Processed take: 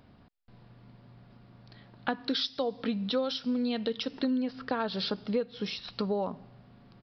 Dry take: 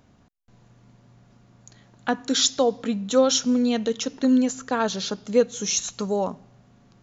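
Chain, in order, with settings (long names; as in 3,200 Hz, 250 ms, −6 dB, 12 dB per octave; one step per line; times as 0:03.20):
0:02.10–0:04.31: high-shelf EQ 3,900 Hz +7.5 dB
downward compressor 6 to 1, threshold −27 dBFS, peak gain reduction 14.5 dB
downsampling to 11,025 Hz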